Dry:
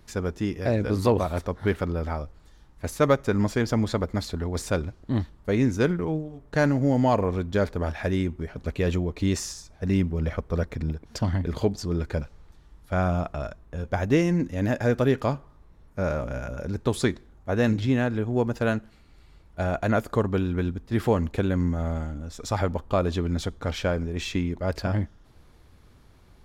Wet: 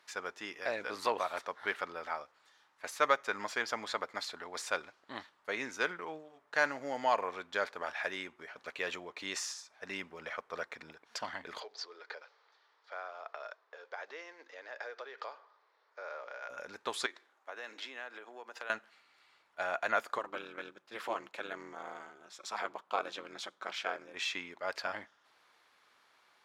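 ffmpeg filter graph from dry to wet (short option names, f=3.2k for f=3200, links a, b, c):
-filter_complex "[0:a]asettb=1/sr,asplit=3[a][b][c];[a]atrim=end=11.604[d];[b]atrim=start=11.6:end=16.5,asetpts=PTS-STARTPTS,afade=t=in:d=0.004:c=qsin,afade=t=out:st=4.896:d=0.004:c=qsin,acompressor=threshold=-30dB:ratio=6:attack=3.2:release=140:knee=1:detection=peak,acrusher=bits=9:mode=log:mix=0:aa=0.000001,highpass=f=390:w=0.5412,highpass=f=390:w=1.3066,equalizer=f=450:t=q:w=4:g=6,equalizer=f=2.7k:t=q:w=4:g=-4,equalizer=f=4.6k:t=q:w=4:g=4,lowpass=f=5.5k:w=0.5412,lowpass=f=5.5k:w=1.3066[e];[c]atrim=start=16.496[f];[d][e]acrossfade=d=0.004:c1=hsin:c2=qsin[g];[g][f]acrossfade=d=0.004:c1=qsin:c2=hsin,asettb=1/sr,asplit=3[h][i][j];[h]atrim=end=17.064[k];[i]atrim=start=17.06:end=18.7,asetpts=PTS-STARTPTS,afade=t=in:d=0.004:c=qsin,afade=t=out:st=1.636:d=0.004:c=qsin,highpass=f=280:w=0.5412,highpass=f=280:w=1.3066,acompressor=threshold=-34dB:ratio=4:attack=3.2:release=140:knee=1:detection=peak[l];[j]atrim=start=18.696[m];[k][l]acrossfade=d=0.004:c1=hsin:c2=qsin[n];[n][m]acrossfade=d=0.004:c1=qsin:c2=hsin,asettb=1/sr,asplit=3[o][p][q];[o]atrim=end=20.184[r];[p]atrim=start=20.18:end=24.14,asetpts=PTS-STARTPTS,afade=t=in:d=0.004:c=qsin,afade=t=out:st=3.956:d=0.004:c=qsin,highpass=85,bandreject=f=1.8k:w=16,aeval=exprs='val(0)*sin(2*PI*110*n/s)':c=same[s];[q]atrim=start=24.136[t];[r][s]acrossfade=d=0.004:c1=hsin:c2=qsin[u];[u][t]acrossfade=d=0.004:c1=qsin:c2=hsin,highpass=1.1k,aemphasis=mode=reproduction:type=50kf,volume=1.5dB"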